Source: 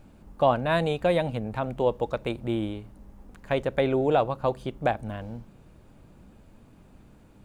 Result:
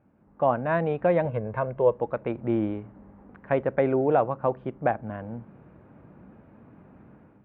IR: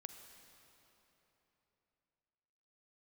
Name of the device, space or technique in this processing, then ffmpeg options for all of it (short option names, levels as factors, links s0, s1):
action camera in a waterproof case: -filter_complex "[0:a]highpass=110,asettb=1/sr,asplit=3[s0][s1][s2];[s0]atrim=end=1.254[s3];[s1]atrim=start=1.25:end=1.94,asetpts=PTS-STARTPTS,afade=t=in:d=0.004:c=qsin,afade=t=out:st=0.686:d=0.004:c=qsin,aecho=1:1:1.9:0.62,atrim=end_sample=30429[s4];[s2]atrim=start=1.936[s5];[s3][s4]acrossfade=d=0.004:c1=hsin:c2=qsin[s6];[s6][s5]acrossfade=d=0.004:c1=qsin:c2=hsin,lowpass=f=2000:w=0.5412,lowpass=f=2000:w=1.3066,dynaudnorm=f=140:g=5:m=4.47,volume=0.376" -ar 44100 -c:a aac -b:a 128k